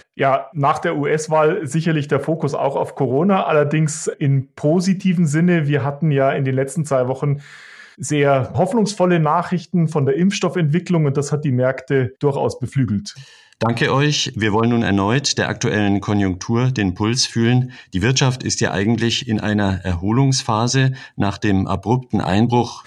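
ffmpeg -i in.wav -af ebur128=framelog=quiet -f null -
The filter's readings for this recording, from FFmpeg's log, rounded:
Integrated loudness:
  I:         -18.2 LUFS
  Threshold: -28.3 LUFS
Loudness range:
  LRA:         1.6 LU
  Threshold: -38.3 LUFS
  LRA low:   -19.1 LUFS
  LRA high:  -17.5 LUFS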